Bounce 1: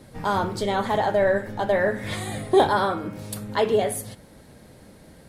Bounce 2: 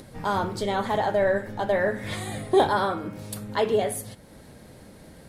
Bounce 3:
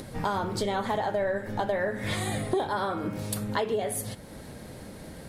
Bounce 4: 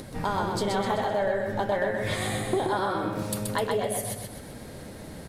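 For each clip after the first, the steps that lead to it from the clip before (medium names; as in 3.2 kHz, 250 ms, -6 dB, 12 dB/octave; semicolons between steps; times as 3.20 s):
upward compressor, threshold -39 dBFS; trim -2 dB
compression 6:1, threshold -30 dBFS, peak gain reduction 15 dB; trim +4.5 dB
feedback delay 128 ms, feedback 45%, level -3.5 dB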